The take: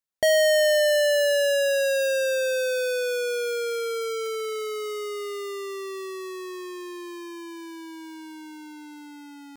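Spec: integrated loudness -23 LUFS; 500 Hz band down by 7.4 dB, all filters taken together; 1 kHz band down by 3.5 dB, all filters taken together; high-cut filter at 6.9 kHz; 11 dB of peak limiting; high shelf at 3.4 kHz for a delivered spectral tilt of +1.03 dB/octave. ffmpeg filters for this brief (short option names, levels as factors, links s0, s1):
-af "lowpass=6900,equalizer=f=500:t=o:g=-7.5,equalizer=f=1000:t=o:g=-5,highshelf=f=3400:g=6.5,volume=3.55,alimiter=limit=0.211:level=0:latency=1"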